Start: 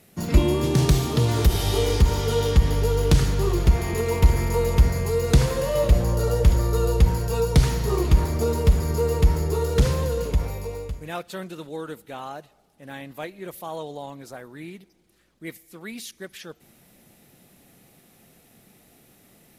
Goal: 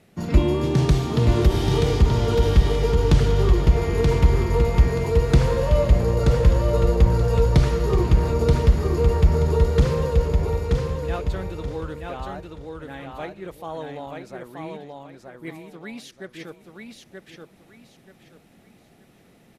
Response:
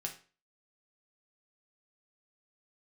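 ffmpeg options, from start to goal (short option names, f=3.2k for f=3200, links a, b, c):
-af "aemphasis=mode=reproduction:type=50fm,aecho=1:1:929|1858|2787|3716:0.631|0.177|0.0495|0.0139"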